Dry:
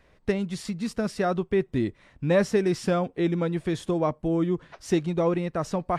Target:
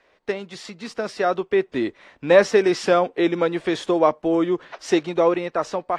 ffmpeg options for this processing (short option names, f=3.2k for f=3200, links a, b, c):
-filter_complex "[0:a]dynaudnorm=f=580:g=5:m=7dB,acrossover=split=310 6800:gain=0.0891 1 0.178[a][b][c];[a][b][c]amix=inputs=3:normalize=0,volume=3dB" -ar 48000 -c:a aac -b:a 48k